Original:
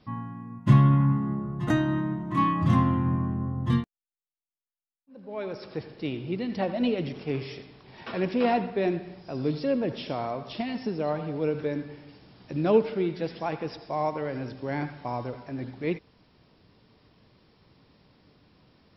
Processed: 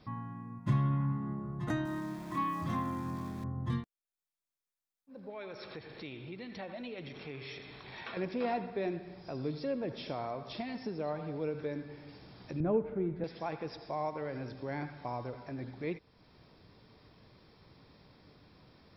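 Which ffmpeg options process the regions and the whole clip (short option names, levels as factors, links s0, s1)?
-filter_complex "[0:a]asettb=1/sr,asplit=3[s0][s1][s2];[s0]atrim=end=1.854[s3];[s1]atrim=start=1.85:end=3.44,asetpts=PTS-STARTPTS,afade=t=in:d=0.004:c=qsin,afade=t=out:st=1.586:d=0.004:c=qsin,equalizer=f=110:w=1.1:g=-9.5,aeval=exprs='val(0)*gte(abs(val(0)),0.00794)':c=same[s4];[s2]atrim=start=3.436[s5];[s3][s4]acrossfade=d=0.004:c1=hsin:c2=qsin[s6];[s6][s5]acrossfade=d=0.004:c1=qsin:c2=hsin,asettb=1/sr,asplit=3[s7][s8][s9];[s7]atrim=end=5.304[s10];[s8]atrim=start=5.3:end=8.17,asetpts=PTS-STARTPTS,afade=t=in:d=0.004:c=qsin,afade=t=out:st=2.866:d=0.004:c=qsin,bandreject=f=4900:w=5.6,acompressor=threshold=0.00501:ratio=2:attack=3.2:release=140:knee=1:detection=peak,equalizer=f=2900:w=0.41:g=8.5[s11];[s9]atrim=start=8.166[s12];[s10][s11]acrossfade=d=0.004:c1=hsin:c2=qsin[s13];[s13][s12]acrossfade=d=0.004:c1=qsin:c2=hsin,asettb=1/sr,asplit=3[s14][s15][s16];[s14]atrim=end=12.604[s17];[s15]atrim=start=12.6:end=13.24,asetpts=PTS-STARTPTS,afade=t=in:d=0.004:c=qsin,afade=t=out:st=0.636:d=0.004:c=qsin,lowpass=1700,aemphasis=mode=reproduction:type=bsi[s18];[s16]atrim=start=13.236[s19];[s17][s18]acrossfade=d=0.004:c1=hsin:c2=qsin[s20];[s20][s19]acrossfade=d=0.004:c1=qsin:c2=hsin,bandreject=f=2900:w=8.8,acompressor=threshold=0.00398:ratio=1.5,equalizer=f=230:w=1.5:g=-2.5,volume=1.12"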